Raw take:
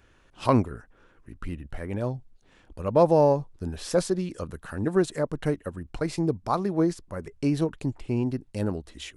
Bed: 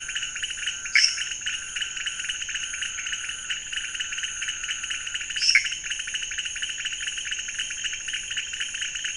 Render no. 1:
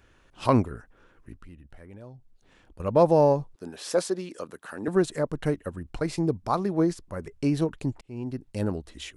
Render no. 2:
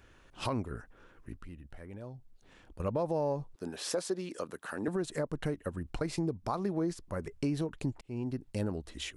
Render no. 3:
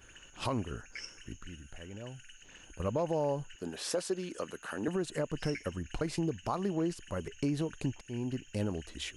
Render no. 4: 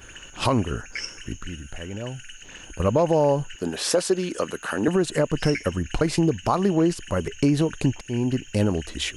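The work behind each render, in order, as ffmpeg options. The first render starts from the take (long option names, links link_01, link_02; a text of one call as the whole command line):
ffmpeg -i in.wav -filter_complex "[0:a]asettb=1/sr,asplit=3[link_01][link_02][link_03];[link_01]atrim=end=1.354[link_04];[link_02]atrim=start=1.35:end=2.8,asetpts=PTS-STARTPTS,afade=type=in:duration=0.004:curve=qsin,afade=type=out:start_time=1.446:duration=0.004:curve=qsin,acompressor=threshold=-54dB:ratio=2:attack=3.2:release=140:knee=1:detection=peak[link_05];[link_03]atrim=start=2.796[link_06];[link_04][link_05]acrossfade=duration=0.004:curve1=hsin:curve2=qsin[link_07];[link_07][link_06]acrossfade=duration=0.004:curve1=qsin:curve2=hsin,asettb=1/sr,asplit=3[link_08][link_09][link_10];[link_08]atrim=end=3.554[link_11];[link_09]atrim=start=3.55:end=4.88,asetpts=PTS-STARTPTS,afade=type=in:duration=0.004:curve=qsin,afade=type=out:start_time=1.326:duration=0.004:curve=qsin,highpass=300[link_12];[link_10]atrim=start=4.876[link_13];[link_11][link_12]acrossfade=duration=0.004:curve1=hsin:curve2=qsin[link_14];[link_14][link_13]acrossfade=duration=0.004:curve1=qsin:curve2=hsin,asplit=2[link_15][link_16];[link_15]atrim=end=8.01,asetpts=PTS-STARTPTS,afade=type=out:start_time=8.006:duration=0.004:curve=hsin[link_17];[link_16]atrim=start=8.01,asetpts=PTS-STARTPTS,afade=type=in:duration=0.5[link_18];[link_17][link_18]concat=n=2:v=0:a=1" out.wav
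ffmpeg -i in.wav -af "alimiter=limit=-17dB:level=0:latency=1:release=131,acompressor=threshold=-33dB:ratio=2" out.wav
ffmpeg -i in.wav -i bed.wav -filter_complex "[1:a]volume=-26dB[link_01];[0:a][link_01]amix=inputs=2:normalize=0" out.wav
ffmpeg -i in.wav -af "volume=12dB" out.wav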